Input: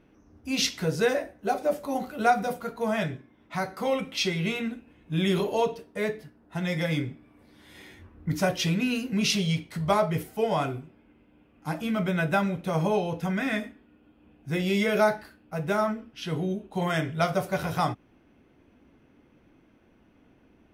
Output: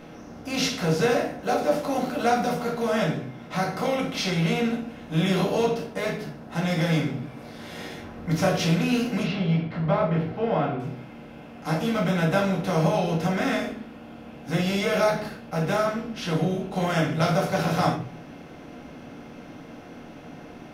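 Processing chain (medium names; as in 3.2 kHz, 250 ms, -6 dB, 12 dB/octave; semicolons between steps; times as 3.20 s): spectral levelling over time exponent 0.6; 9.23–10.80 s: distance through air 390 m; reverberation RT60 0.45 s, pre-delay 4 ms, DRR -1 dB; trim -6 dB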